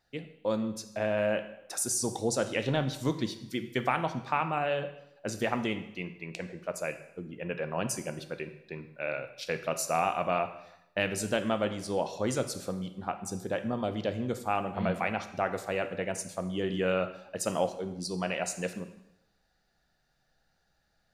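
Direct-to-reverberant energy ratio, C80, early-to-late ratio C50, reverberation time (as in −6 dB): 8.5 dB, 13.5 dB, 11.5 dB, 0.85 s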